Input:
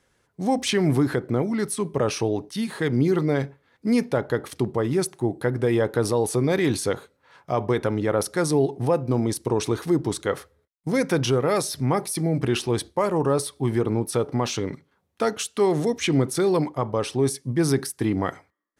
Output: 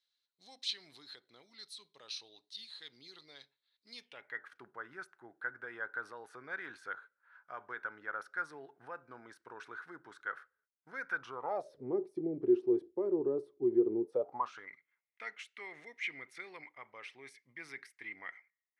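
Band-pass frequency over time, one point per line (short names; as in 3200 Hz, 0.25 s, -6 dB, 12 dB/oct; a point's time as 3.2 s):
band-pass, Q 9.5
3.93 s 4000 Hz
4.5 s 1500 Hz
11.15 s 1500 Hz
11.93 s 370 Hz
14.03 s 370 Hz
14.69 s 2100 Hz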